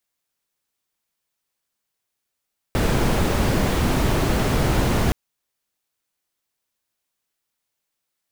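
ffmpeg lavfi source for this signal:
-f lavfi -i "anoisesrc=c=brown:a=0.525:d=2.37:r=44100:seed=1"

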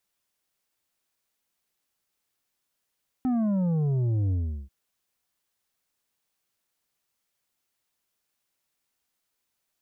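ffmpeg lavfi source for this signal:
-f lavfi -i "aevalsrc='0.0708*clip((1.44-t)/0.38,0,1)*tanh(2.24*sin(2*PI*260*1.44/log(65/260)*(exp(log(65/260)*t/1.44)-1)))/tanh(2.24)':d=1.44:s=44100"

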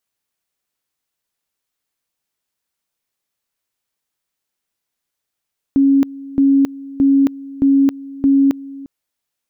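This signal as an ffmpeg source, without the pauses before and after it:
-f lavfi -i "aevalsrc='pow(10,(-8.5-20*gte(mod(t,0.62),0.27))/20)*sin(2*PI*275*t)':d=3.1:s=44100"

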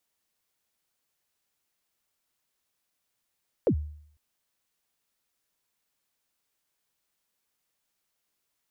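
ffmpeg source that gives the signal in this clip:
-f lavfi -i "aevalsrc='0.141*pow(10,-3*t/0.63)*sin(2*PI*(580*0.079/log(75/580)*(exp(log(75/580)*min(t,0.079)/0.079)-1)+75*max(t-0.079,0)))':d=0.5:s=44100"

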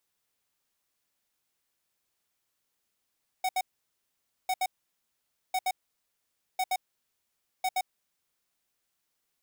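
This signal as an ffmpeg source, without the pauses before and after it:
-f lavfi -i "aevalsrc='0.0422*(2*lt(mod(747*t,1),0.5)-1)*clip(min(mod(mod(t,1.05),0.12),0.05-mod(mod(t,1.05),0.12))/0.005,0,1)*lt(mod(t,1.05),0.24)':d=5.25:s=44100"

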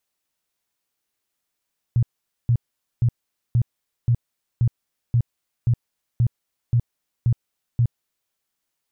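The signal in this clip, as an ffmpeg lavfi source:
-f lavfi -i "aevalsrc='0.2*sin(2*PI*119*mod(t,0.53))*lt(mod(t,0.53),8/119)':d=6.36:s=44100"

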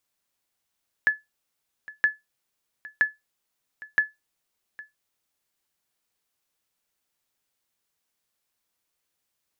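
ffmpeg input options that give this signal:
-f lavfi -i "aevalsrc='0.266*(sin(2*PI*1720*mod(t,0.97))*exp(-6.91*mod(t,0.97)/0.18)+0.0944*sin(2*PI*1720*max(mod(t,0.97)-0.81,0))*exp(-6.91*max(mod(t,0.97)-0.81,0)/0.18))':d=3.88:s=44100"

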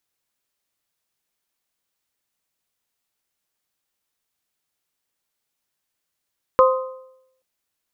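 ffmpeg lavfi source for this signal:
-f lavfi -i "aevalsrc='0.335*pow(10,-3*t/0.8)*sin(2*PI*520*t)+0.237*pow(10,-3*t/0.65)*sin(2*PI*1040*t)+0.168*pow(10,-3*t/0.615)*sin(2*PI*1248*t)':d=0.83:s=44100"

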